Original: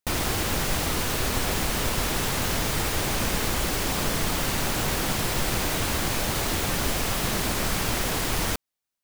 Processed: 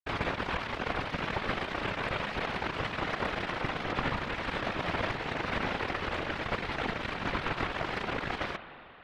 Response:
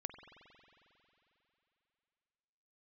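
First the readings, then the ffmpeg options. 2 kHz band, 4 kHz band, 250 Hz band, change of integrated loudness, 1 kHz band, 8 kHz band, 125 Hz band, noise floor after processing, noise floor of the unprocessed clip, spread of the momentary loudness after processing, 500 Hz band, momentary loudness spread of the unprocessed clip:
-3.0 dB, -10.5 dB, -7.0 dB, -8.0 dB, -3.0 dB, -29.0 dB, -9.5 dB, -47 dBFS, under -85 dBFS, 2 LU, -4.5 dB, 0 LU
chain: -filter_complex "[0:a]highpass=f=220:t=q:w=0.5412,highpass=f=220:t=q:w=1.307,lowpass=f=2600:t=q:w=0.5176,lowpass=f=2600:t=q:w=0.7071,lowpass=f=2600:t=q:w=1.932,afreqshift=-230,acrusher=bits=3:mix=0:aa=0.5,asplit=2[s0][s1];[1:a]atrim=start_sample=2205,lowpass=4400[s2];[s1][s2]afir=irnorm=-1:irlink=0,volume=1.88[s3];[s0][s3]amix=inputs=2:normalize=0,afftfilt=real='hypot(re,im)*cos(2*PI*random(0))':imag='hypot(re,im)*sin(2*PI*random(1))':win_size=512:overlap=0.75,volume=1.19"

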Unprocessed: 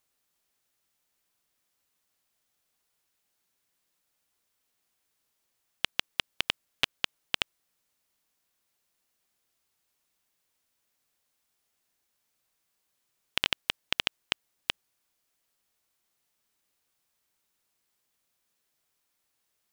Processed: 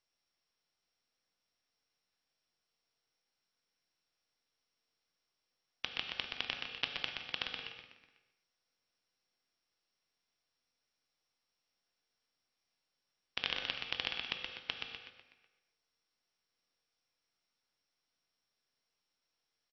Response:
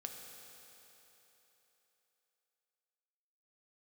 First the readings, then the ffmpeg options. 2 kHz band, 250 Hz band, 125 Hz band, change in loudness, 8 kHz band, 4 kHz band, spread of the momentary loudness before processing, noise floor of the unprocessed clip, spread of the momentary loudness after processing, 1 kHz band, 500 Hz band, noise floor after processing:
-6.5 dB, -6.5 dB, -7.0 dB, -7.0 dB, -16.5 dB, -7.0 dB, 6 LU, -78 dBFS, 9 LU, -6.5 dB, -5.5 dB, under -85 dBFS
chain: -filter_complex "[0:a]highpass=41,bandreject=f=50:t=h:w=6,bandreject=f=100:t=h:w=6,bandreject=f=150:t=h:w=6,bandreject=f=200:t=h:w=6,asplit=7[s0][s1][s2][s3][s4][s5][s6];[s1]adelay=124,afreqshift=-110,volume=0.531[s7];[s2]adelay=248,afreqshift=-220,volume=0.254[s8];[s3]adelay=372,afreqshift=-330,volume=0.122[s9];[s4]adelay=496,afreqshift=-440,volume=0.0589[s10];[s5]adelay=620,afreqshift=-550,volume=0.0282[s11];[s6]adelay=744,afreqshift=-660,volume=0.0135[s12];[s0][s7][s8][s9][s10][s11][s12]amix=inputs=7:normalize=0[s13];[1:a]atrim=start_sample=2205,afade=t=out:st=0.32:d=0.01,atrim=end_sample=14553[s14];[s13][s14]afir=irnorm=-1:irlink=0,volume=0.596" -ar 22050 -c:a mp2 -b:a 48k

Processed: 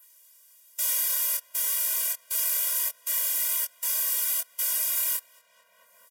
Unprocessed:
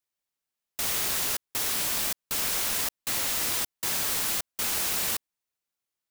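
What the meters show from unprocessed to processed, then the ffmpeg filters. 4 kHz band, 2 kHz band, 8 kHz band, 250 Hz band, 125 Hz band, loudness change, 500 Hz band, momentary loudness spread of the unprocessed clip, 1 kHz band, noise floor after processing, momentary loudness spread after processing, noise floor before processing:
-5.0 dB, -5.5 dB, +1.5 dB, under -25 dB, under -25 dB, +1.5 dB, -8.5 dB, 3 LU, -8.0 dB, -61 dBFS, 3 LU, under -85 dBFS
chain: -filter_complex "[0:a]aresample=32000,aresample=44100,highpass=620,flanger=delay=19:depth=7.7:speed=1.1,aemphasis=mode=production:type=50fm,bandreject=f=4100:w=6.6,asplit=2[s0][s1];[s1]adelay=222,lowpass=f=2400:p=1,volume=0.1,asplit=2[s2][s3];[s3]adelay=222,lowpass=f=2400:p=1,volume=0.47,asplit=2[s4][s5];[s5]adelay=222,lowpass=f=2400:p=1,volume=0.47,asplit=2[s6][s7];[s7]adelay=222,lowpass=f=2400:p=1,volume=0.47[s8];[s0][s2][s4][s6][s8]amix=inputs=5:normalize=0,adynamicequalizer=threshold=0.0126:dfrequency=6200:dqfactor=0.72:tfrequency=6200:tqfactor=0.72:attack=5:release=100:ratio=0.375:range=2:mode=cutabove:tftype=bell,acompressor=mode=upward:threshold=0.0316:ratio=2.5,afftfilt=real='re*eq(mod(floor(b*sr/1024/230),2),0)':imag='im*eq(mod(floor(b*sr/1024/230),2),0)':win_size=1024:overlap=0.75"

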